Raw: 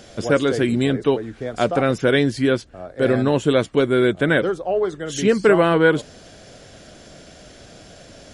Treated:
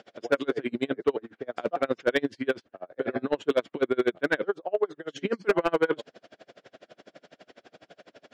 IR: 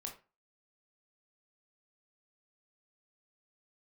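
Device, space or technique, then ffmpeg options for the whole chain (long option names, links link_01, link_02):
helicopter radio: -af "highpass=300,lowpass=3000,aeval=exprs='val(0)*pow(10,-33*(0.5-0.5*cos(2*PI*12*n/s))/20)':channel_layout=same,asoftclip=type=hard:threshold=-14.5dB"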